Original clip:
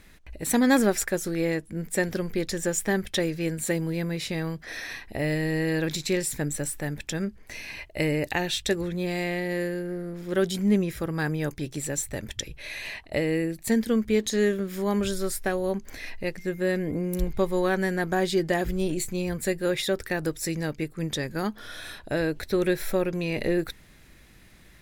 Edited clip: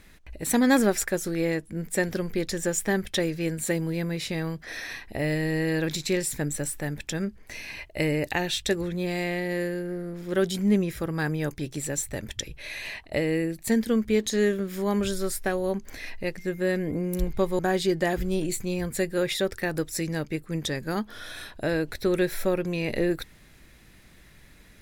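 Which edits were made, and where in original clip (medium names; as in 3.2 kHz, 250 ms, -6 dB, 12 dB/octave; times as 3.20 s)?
17.59–18.07 s: delete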